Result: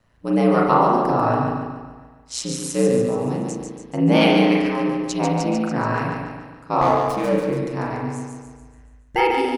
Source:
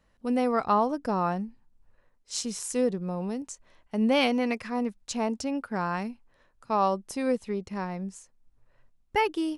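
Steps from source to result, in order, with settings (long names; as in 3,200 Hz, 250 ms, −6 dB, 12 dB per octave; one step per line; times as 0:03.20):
repeating echo 143 ms, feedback 51%, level −4.5 dB
ring modulation 60 Hz
convolution reverb, pre-delay 36 ms, DRR 0 dB
0:06.81–0:07.57: windowed peak hold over 5 samples
level +6.5 dB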